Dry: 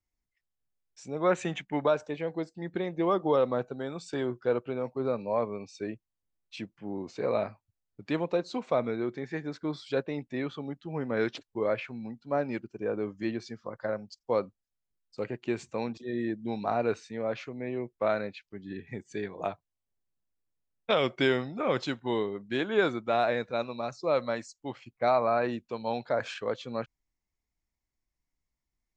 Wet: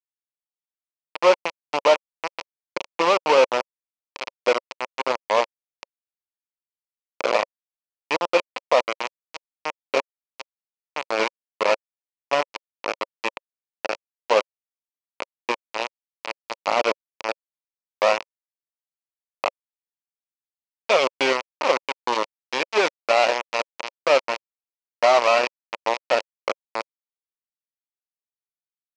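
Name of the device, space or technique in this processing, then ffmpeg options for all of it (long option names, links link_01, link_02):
hand-held game console: -af "acrusher=bits=3:mix=0:aa=0.000001,highpass=420,equalizer=frequency=550:width_type=q:width=4:gain=6,equalizer=frequency=960:width_type=q:width=4:gain=6,equalizer=frequency=1600:width_type=q:width=4:gain=-7,equalizer=frequency=2500:width_type=q:width=4:gain=5,equalizer=frequency=3600:width_type=q:width=4:gain=-6,lowpass=frequency=5300:width=0.5412,lowpass=frequency=5300:width=1.3066,volume=5.5dB"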